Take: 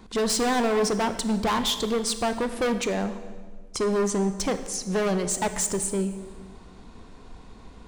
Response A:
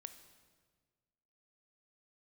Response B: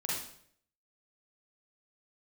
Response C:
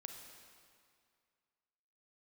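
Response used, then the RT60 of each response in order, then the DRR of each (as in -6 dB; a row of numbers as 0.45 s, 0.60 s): A; 1.6 s, 0.65 s, 2.2 s; 9.5 dB, -6.0 dB, 3.5 dB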